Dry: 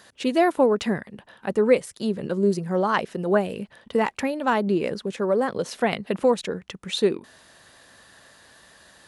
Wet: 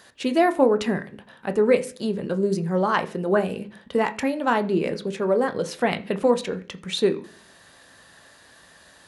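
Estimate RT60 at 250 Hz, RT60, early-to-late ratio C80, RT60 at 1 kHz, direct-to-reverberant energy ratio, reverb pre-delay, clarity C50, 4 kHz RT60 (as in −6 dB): 0.65 s, 0.45 s, 21.5 dB, 0.40 s, 8.0 dB, 12 ms, 17.0 dB, 0.55 s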